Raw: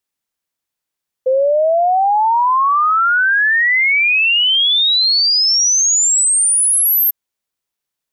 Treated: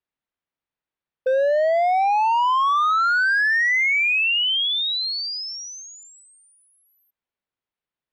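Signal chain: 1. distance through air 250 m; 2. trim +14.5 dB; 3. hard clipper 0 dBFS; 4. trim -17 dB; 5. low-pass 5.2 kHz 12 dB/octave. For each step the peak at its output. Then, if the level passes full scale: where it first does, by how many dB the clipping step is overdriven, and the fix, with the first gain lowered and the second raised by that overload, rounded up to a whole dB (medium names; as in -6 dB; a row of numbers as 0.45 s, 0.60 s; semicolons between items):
-11.0 dBFS, +3.5 dBFS, 0.0 dBFS, -17.0 dBFS, -16.5 dBFS; step 2, 3.5 dB; step 2 +10.5 dB, step 4 -13 dB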